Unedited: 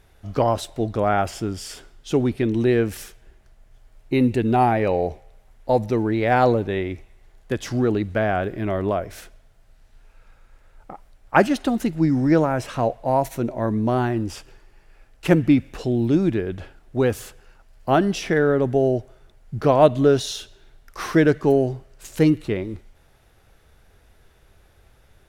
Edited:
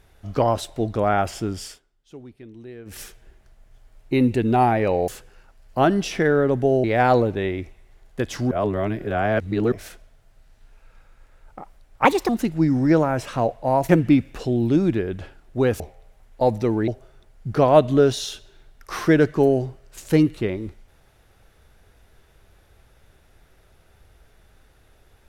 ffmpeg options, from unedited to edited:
-filter_complex "[0:a]asplit=12[s0][s1][s2][s3][s4][s5][s6][s7][s8][s9][s10][s11];[s0]atrim=end=1.79,asetpts=PTS-STARTPTS,afade=t=out:st=1.64:d=0.15:silence=0.0891251[s12];[s1]atrim=start=1.79:end=2.85,asetpts=PTS-STARTPTS,volume=0.0891[s13];[s2]atrim=start=2.85:end=5.082,asetpts=PTS-STARTPTS,afade=t=in:d=0.15:silence=0.0891251[s14];[s3]atrim=start=17.188:end=18.952[s15];[s4]atrim=start=6.158:end=7.832[s16];[s5]atrim=start=7.828:end=9.042,asetpts=PTS-STARTPTS,areverse[s17];[s6]atrim=start=9.038:end=11.374[s18];[s7]atrim=start=11.37:end=11.7,asetpts=PTS-STARTPTS,asetrate=60858,aresample=44100[s19];[s8]atrim=start=11.696:end=13.302[s20];[s9]atrim=start=15.278:end=17.192[s21];[s10]atrim=start=5.078:end=6.162[s22];[s11]atrim=start=18.948[s23];[s12][s13][s14]concat=n=3:v=0:a=1[s24];[s24][s15]acrossfade=d=0.004:c1=hsin:c2=hsin[s25];[s25][s16]acrossfade=d=0.004:c1=hsin:c2=hsin[s26];[s26][s17]acrossfade=d=0.004:c1=hsin:c2=hsin[s27];[s27][s18]acrossfade=d=0.004:c1=hsin:c2=hsin[s28];[s28][s19]acrossfade=d=0.004:c1=hsin:c2=hsin[s29];[s29][s20]acrossfade=d=0.004:c1=hsin:c2=hsin[s30];[s30][s21]acrossfade=d=0.004:c1=hsin:c2=hsin[s31];[s31][s22]acrossfade=d=0.004:c1=hsin:c2=hsin[s32];[s32][s23]acrossfade=d=0.004:c1=hsin:c2=hsin"

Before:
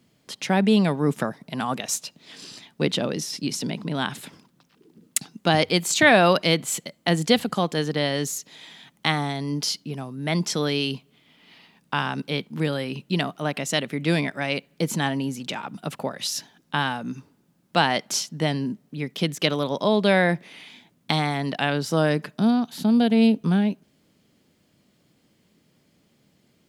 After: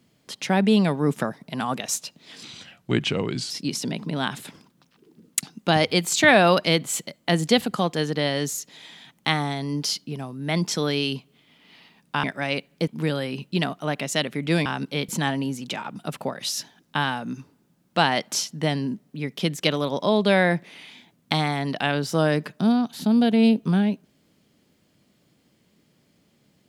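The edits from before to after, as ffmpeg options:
-filter_complex "[0:a]asplit=7[s0][s1][s2][s3][s4][s5][s6];[s0]atrim=end=2.434[s7];[s1]atrim=start=2.43:end=3.29,asetpts=PTS-STARTPTS,asetrate=35280,aresample=44100[s8];[s2]atrim=start=3.286:end=12.022[s9];[s3]atrim=start=14.228:end=14.872[s10];[s4]atrim=start=12.448:end=14.232[s11];[s5]atrim=start=12.018:end=12.452[s12];[s6]atrim=start=14.868[s13];[s7][s8]acrossfade=d=0.004:c1=hsin:c2=hsin[s14];[s14][s9]acrossfade=d=0.004:c1=hsin:c2=hsin[s15];[s15][s10]acrossfade=d=0.004:c1=hsin:c2=hsin[s16];[s16][s11]acrossfade=d=0.004:c1=hsin:c2=hsin[s17];[s17][s12]acrossfade=d=0.004:c1=hsin:c2=hsin[s18];[s18][s13]acrossfade=d=0.004:c1=hsin:c2=hsin"

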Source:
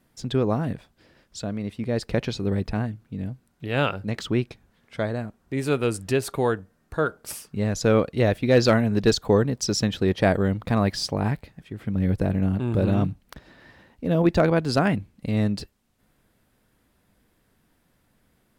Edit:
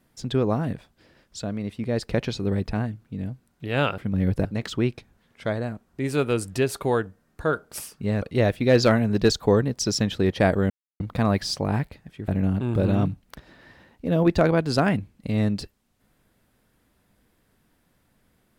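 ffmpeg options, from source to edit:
-filter_complex "[0:a]asplit=6[s0][s1][s2][s3][s4][s5];[s0]atrim=end=3.982[s6];[s1]atrim=start=11.798:end=12.272[s7];[s2]atrim=start=3.978:end=7.752[s8];[s3]atrim=start=8.038:end=10.52,asetpts=PTS-STARTPTS,afade=t=out:st=2.478:d=0.004:c=hsin,apad=pad_dur=0.3[s9];[s4]atrim=start=10.52:end=11.802,asetpts=PTS-STARTPTS,afade=t=in:d=0.004:c=hsin[s10];[s5]atrim=start=12.268[s11];[s6][s7]acrossfade=d=0.004:c1=hsin:c2=hsin[s12];[s12][s8]acrossfade=d=0.004:c1=hsin:c2=hsin[s13];[s9][s10]concat=n=2:v=0:a=1[s14];[s13][s14]acrossfade=d=0.004:c1=hsin:c2=hsin[s15];[s15][s11]acrossfade=d=0.004:c1=hsin:c2=hsin"

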